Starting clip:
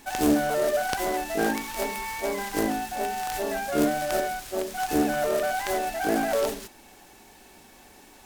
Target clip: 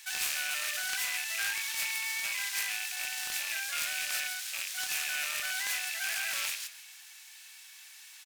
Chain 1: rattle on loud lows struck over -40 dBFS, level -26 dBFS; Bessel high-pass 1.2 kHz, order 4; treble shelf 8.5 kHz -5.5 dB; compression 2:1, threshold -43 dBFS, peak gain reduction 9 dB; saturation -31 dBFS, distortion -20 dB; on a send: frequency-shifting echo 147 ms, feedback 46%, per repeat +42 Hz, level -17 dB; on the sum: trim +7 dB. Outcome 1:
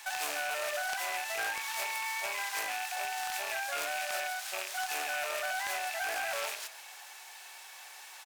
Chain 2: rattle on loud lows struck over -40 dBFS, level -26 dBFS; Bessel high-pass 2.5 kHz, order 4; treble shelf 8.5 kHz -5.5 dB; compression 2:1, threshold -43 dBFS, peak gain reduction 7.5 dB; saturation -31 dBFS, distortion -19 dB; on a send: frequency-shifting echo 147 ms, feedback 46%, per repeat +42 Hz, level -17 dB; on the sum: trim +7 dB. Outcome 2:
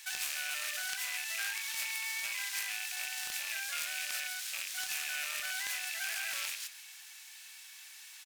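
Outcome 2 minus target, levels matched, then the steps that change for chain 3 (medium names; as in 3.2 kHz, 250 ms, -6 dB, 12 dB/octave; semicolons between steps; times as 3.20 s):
compression: peak gain reduction +7.5 dB
remove: compression 2:1, threshold -43 dBFS, peak gain reduction 7.5 dB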